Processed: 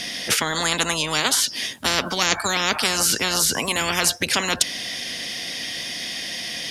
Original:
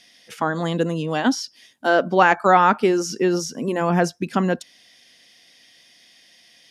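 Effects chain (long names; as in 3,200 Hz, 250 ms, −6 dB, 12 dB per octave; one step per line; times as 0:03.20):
low-shelf EQ 320 Hz +5 dB
every bin compressed towards the loudest bin 10 to 1
level −1 dB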